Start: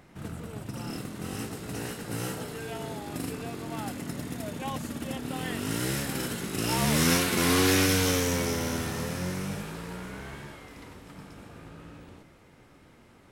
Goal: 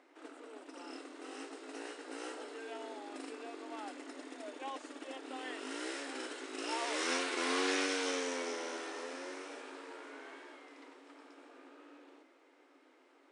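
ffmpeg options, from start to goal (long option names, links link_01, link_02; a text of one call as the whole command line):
ffmpeg -i in.wav -filter_complex "[0:a]highshelf=frequency=7200:gain=-11.5,afftfilt=real='re*between(b*sr/4096,250,9900)':imag='im*between(b*sr/4096,250,9900)':win_size=4096:overlap=0.75,acrossover=split=330|3000[link_01][link_02][link_03];[link_01]acompressor=threshold=-47dB:ratio=3[link_04];[link_04][link_02][link_03]amix=inputs=3:normalize=0,volume=-6.5dB" out.wav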